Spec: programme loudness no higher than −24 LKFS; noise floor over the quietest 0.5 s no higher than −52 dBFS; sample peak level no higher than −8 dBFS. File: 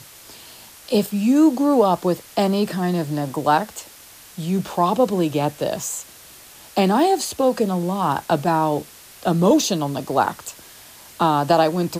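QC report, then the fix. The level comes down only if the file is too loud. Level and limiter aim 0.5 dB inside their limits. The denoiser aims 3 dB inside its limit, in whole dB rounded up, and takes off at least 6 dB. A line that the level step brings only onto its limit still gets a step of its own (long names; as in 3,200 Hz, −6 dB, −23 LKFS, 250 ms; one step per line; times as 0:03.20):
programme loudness −20.0 LKFS: out of spec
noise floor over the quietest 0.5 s −44 dBFS: out of spec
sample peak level −5.0 dBFS: out of spec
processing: broadband denoise 7 dB, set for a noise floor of −44 dBFS
level −4.5 dB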